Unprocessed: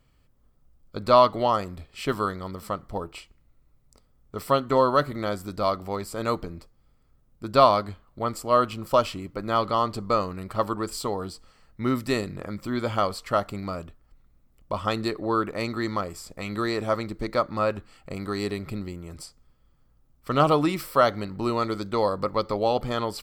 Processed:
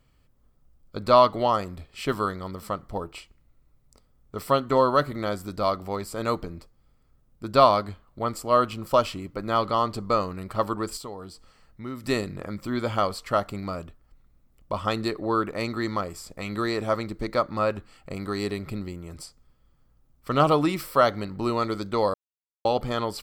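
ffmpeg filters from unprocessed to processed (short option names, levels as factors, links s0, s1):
-filter_complex "[0:a]asettb=1/sr,asplit=3[s0][s1][s2];[s0]atrim=end=10.974[s3];[s1]atrim=start=10.97:end=12.04,asetpts=PTS-STARTPTS,afade=t=in:d=0.004:c=qsin,afade=t=out:st=1.066:d=0.004:c=qsin,acompressor=threshold=0.00355:ratio=1.5:attack=3.2:release=140:knee=1:detection=peak[s4];[s2]atrim=start=12.036[s5];[s3][s4]acrossfade=d=0.004:c1=hsin:c2=qsin[s6];[s6][s5]acrossfade=d=0.004:c1=qsin:c2=hsin,asplit=3[s7][s8][s9];[s7]atrim=end=22.14,asetpts=PTS-STARTPTS,afade=t=out:st=22.136:d=0.004:c=hsin[s10];[s8]atrim=start=22.14:end=22.65,asetpts=PTS-STARTPTS,volume=0[s11];[s9]atrim=start=22.65,asetpts=PTS-STARTPTS,afade=t=in:d=0.004:c=hsin[s12];[s10][s11][s12]concat=n=3:v=0:a=1"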